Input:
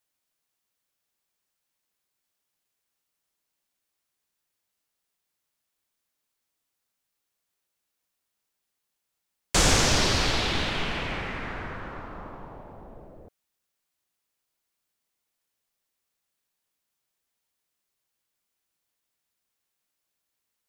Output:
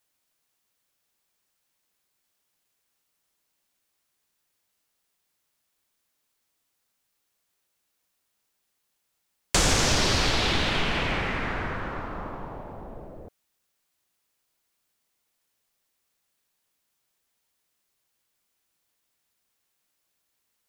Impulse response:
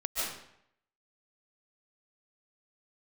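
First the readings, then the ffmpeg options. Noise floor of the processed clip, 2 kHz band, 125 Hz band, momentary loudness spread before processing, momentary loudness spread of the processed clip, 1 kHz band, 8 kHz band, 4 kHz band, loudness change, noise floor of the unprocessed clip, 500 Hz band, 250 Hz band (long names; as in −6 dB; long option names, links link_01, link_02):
−77 dBFS, +1.5 dB, +0.5 dB, 21 LU, 20 LU, +1.5 dB, −0.5 dB, +0.5 dB, 0.0 dB, −82 dBFS, +1.0 dB, +1.0 dB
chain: -af "acompressor=threshold=-26dB:ratio=2.5,volume=5dB"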